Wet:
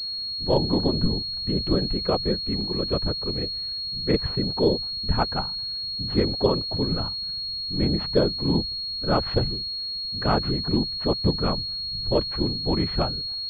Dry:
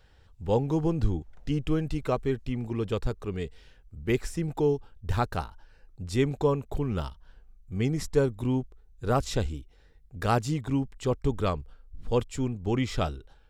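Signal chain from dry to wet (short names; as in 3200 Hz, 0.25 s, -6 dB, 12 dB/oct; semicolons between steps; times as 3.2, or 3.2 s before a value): whisperiser; pulse-width modulation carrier 4300 Hz; gain +3 dB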